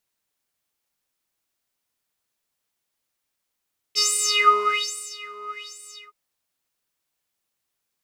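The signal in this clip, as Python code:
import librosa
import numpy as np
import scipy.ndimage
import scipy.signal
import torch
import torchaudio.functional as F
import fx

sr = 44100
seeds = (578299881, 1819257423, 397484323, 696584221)

y = fx.sub_patch_wobble(sr, seeds[0], note=68, wave='square', wave2='saw', interval_st=19, level2_db=-7.0, sub_db=-20.5, noise_db=-14.0, kind='bandpass', cutoff_hz=1800.0, q=7.5, env_oct=1.5, env_decay_s=0.06, env_sustain_pct=45, attack_ms=34.0, decay_s=1.2, sustain_db=-21.0, release_s=0.23, note_s=1.94, lfo_hz=1.2, wobble_oct=1.6)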